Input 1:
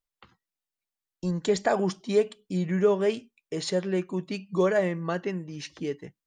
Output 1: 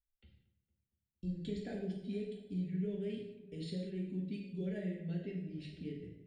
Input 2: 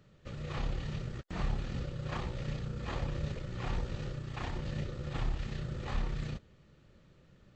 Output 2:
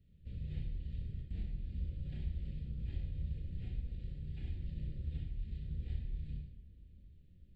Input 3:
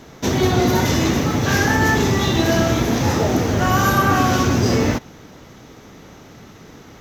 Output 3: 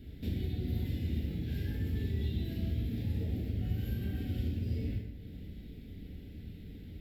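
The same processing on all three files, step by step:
guitar amp tone stack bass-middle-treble 10-0-1
downward compressor 3 to 1, threshold −47 dBFS
phaser with its sweep stopped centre 2,700 Hz, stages 4
on a send: feedback echo with a low-pass in the loop 229 ms, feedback 61%, low-pass 1,700 Hz, level −15 dB
on the sum: reverb whose tail is shaped and stops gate 230 ms falling, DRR −2 dB
level +7 dB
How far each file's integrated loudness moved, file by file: −13.5, −4.5, −18.5 LU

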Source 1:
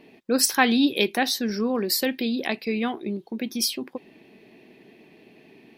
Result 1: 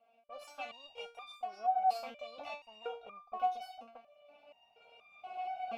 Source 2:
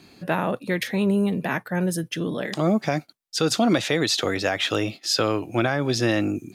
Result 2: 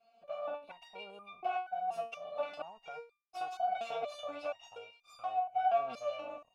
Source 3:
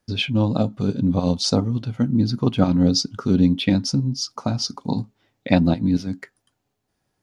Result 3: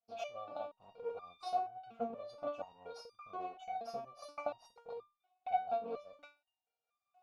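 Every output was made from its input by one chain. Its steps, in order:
lower of the sound and its delayed copy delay 1.4 ms
camcorder AGC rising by 13 dB per second
formant filter a
step-sequenced resonator 4.2 Hz 230–1,200 Hz
level +8.5 dB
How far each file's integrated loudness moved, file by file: −15.0, −14.0, −22.0 LU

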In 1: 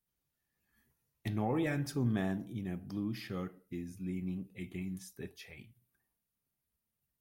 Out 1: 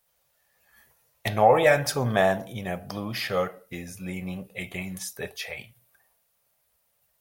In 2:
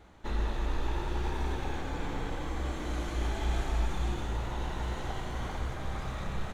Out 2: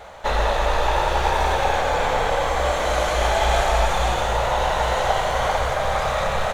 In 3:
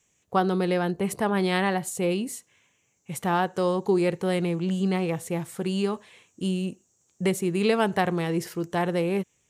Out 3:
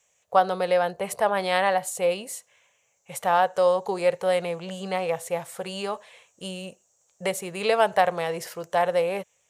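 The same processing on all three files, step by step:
low shelf with overshoot 420 Hz −10 dB, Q 3
normalise the peak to −6 dBFS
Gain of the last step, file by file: +16.5, +17.0, +1.5 decibels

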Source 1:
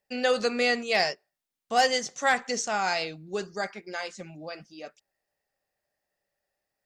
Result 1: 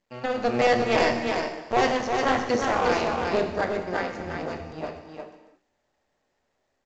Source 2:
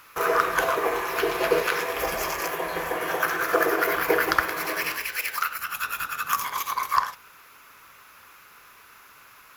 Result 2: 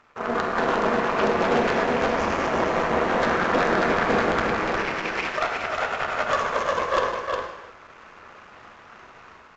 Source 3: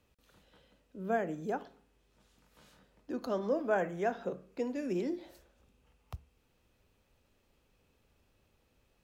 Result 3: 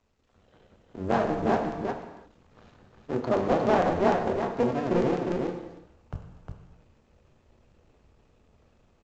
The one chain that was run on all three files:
sub-harmonics by changed cycles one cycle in 2, muted
low-pass filter 1,000 Hz 6 dB per octave
mains-hum notches 50/100/150/200/250/300/350/400 Hz
automatic gain control gain up to 10.5 dB
hard clipping −15.5 dBFS
on a send: single-tap delay 357 ms −4.5 dB
on the sum: reverb whose tail is shaped and stops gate 370 ms falling, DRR 4.5 dB
regular buffer underruns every 0.15 s, samples 128, zero, from 0:00.52
mu-law 128 kbit/s 16,000 Hz
normalise the peak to −9 dBFS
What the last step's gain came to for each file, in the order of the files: −1.0, 0.0, +1.0 decibels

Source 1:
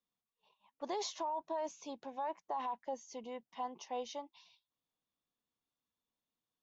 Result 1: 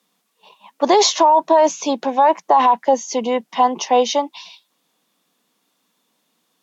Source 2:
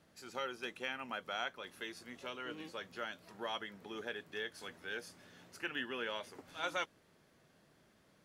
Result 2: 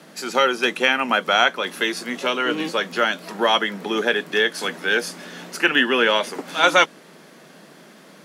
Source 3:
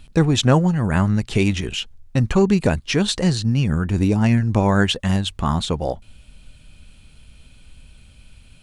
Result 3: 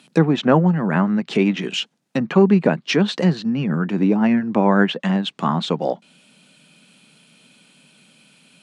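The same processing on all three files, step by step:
treble cut that deepens with the level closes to 2,100 Hz, closed at −14.5 dBFS
Butterworth high-pass 160 Hz 48 dB per octave
normalise the peak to −1.5 dBFS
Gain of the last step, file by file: +25.5, +22.5, +2.5 decibels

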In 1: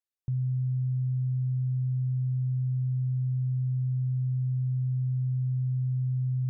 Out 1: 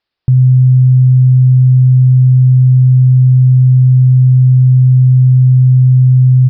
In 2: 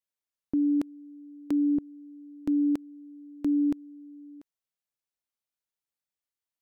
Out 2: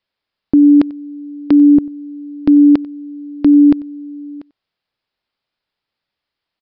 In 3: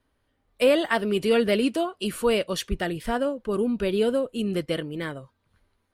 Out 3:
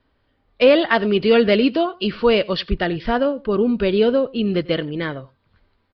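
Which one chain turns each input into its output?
single-tap delay 93 ms −23 dB
downsampling to 11,025 Hz
normalise the peak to −3 dBFS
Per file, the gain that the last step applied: +21.0, +16.5, +6.5 decibels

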